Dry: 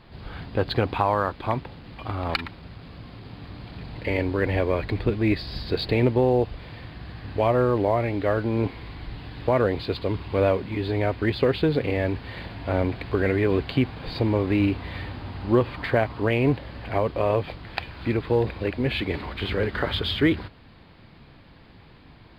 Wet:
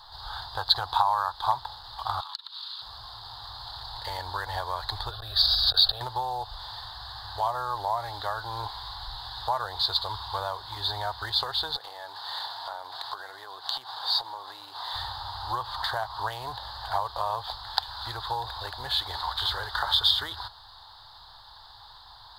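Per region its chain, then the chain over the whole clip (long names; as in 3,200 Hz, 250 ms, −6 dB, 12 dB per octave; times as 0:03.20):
0:02.20–0:02.82: Butterworth high-pass 990 Hz + flat-topped bell 3,300 Hz +10 dB 1.1 octaves + downward compressor 16 to 1, threshold −43 dBFS
0:05.11–0:06.01: gate with flip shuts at −19 dBFS, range −35 dB + phaser with its sweep stopped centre 1,400 Hz, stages 8 + envelope flattener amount 100%
0:11.76–0:14.94: high-pass filter 280 Hz + downward compressor 12 to 1, threshold −31 dBFS
whole clip: parametric band 150 Hz −13 dB 2.9 octaves; downward compressor, threshold −28 dBFS; drawn EQ curve 120 Hz 0 dB, 200 Hz −23 dB, 550 Hz −8 dB, 860 Hz +13 dB, 1,700 Hz +1 dB, 2,400 Hz −23 dB, 3,600 Hz +14 dB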